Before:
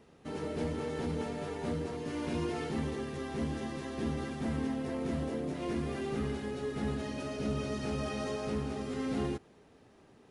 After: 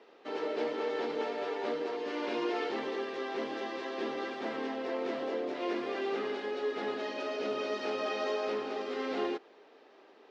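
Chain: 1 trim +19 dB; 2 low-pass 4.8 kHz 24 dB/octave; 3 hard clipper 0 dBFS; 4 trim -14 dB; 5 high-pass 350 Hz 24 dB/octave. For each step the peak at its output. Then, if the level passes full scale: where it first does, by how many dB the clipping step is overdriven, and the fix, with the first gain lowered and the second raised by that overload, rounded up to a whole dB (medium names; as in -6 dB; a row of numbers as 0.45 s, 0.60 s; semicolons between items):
-5.0 dBFS, -5.0 dBFS, -5.0 dBFS, -19.0 dBFS, -21.5 dBFS; nothing clips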